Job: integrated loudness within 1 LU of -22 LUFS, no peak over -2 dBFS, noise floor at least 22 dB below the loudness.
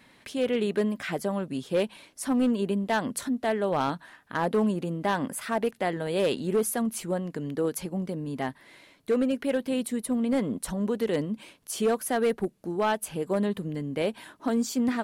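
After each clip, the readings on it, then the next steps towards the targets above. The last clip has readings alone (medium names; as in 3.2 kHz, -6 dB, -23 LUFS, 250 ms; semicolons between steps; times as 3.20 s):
clipped samples 0.8%; clipping level -18.5 dBFS; loudness -28.5 LUFS; peak level -18.5 dBFS; loudness target -22.0 LUFS
-> clip repair -18.5 dBFS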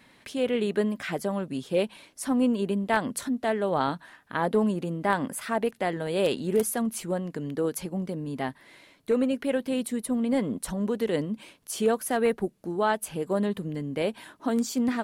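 clipped samples 0.0%; loudness -28.5 LUFS; peak level -9.5 dBFS; loudness target -22.0 LUFS
-> trim +6.5 dB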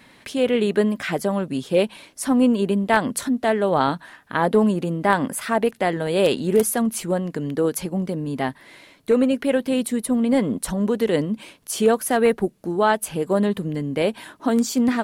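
loudness -22.0 LUFS; peak level -3.0 dBFS; noise floor -53 dBFS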